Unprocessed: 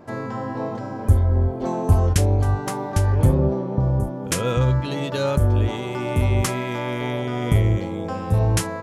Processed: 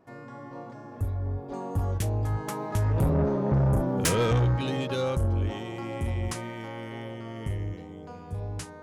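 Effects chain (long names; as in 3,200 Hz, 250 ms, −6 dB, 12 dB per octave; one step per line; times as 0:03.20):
source passing by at 0:03.86, 25 m/s, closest 11 metres
soft clipping −23.5 dBFS, distortion −10 dB
level +4.5 dB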